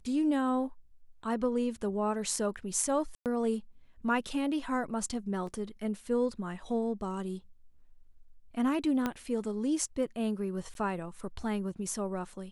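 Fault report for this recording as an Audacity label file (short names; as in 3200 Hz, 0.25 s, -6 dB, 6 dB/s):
3.150000	3.260000	gap 0.108 s
5.470000	5.470000	gap 2.8 ms
9.060000	9.060000	pop -17 dBFS
10.740000	10.750000	gap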